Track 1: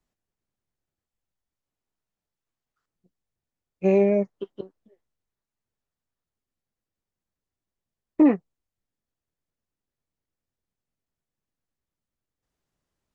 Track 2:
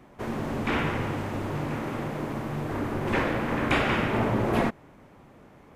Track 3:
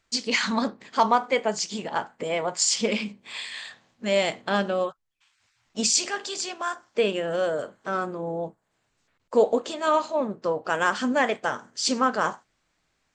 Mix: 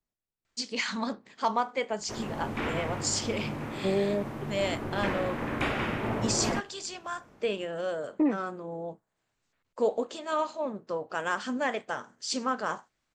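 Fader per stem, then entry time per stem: -8.5 dB, -5.5 dB, -7.0 dB; 0.00 s, 1.90 s, 0.45 s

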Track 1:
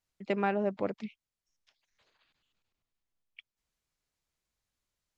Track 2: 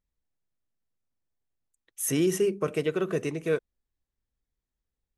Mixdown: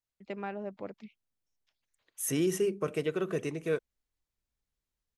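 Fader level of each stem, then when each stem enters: -8.5 dB, -4.0 dB; 0.00 s, 0.20 s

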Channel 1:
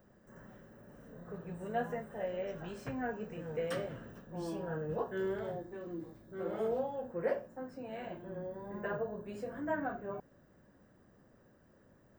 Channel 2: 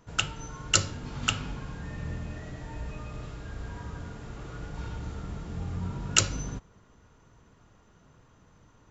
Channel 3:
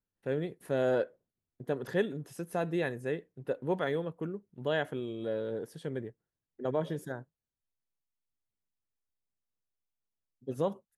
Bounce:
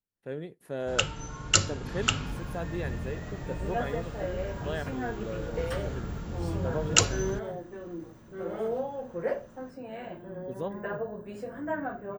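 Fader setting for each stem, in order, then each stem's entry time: +3.0 dB, +1.0 dB, -4.5 dB; 2.00 s, 0.80 s, 0.00 s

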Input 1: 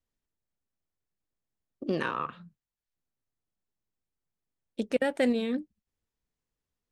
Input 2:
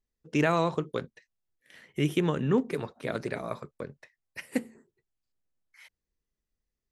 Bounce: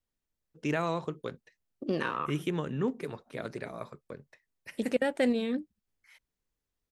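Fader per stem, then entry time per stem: -1.0 dB, -5.5 dB; 0.00 s, 0.30 s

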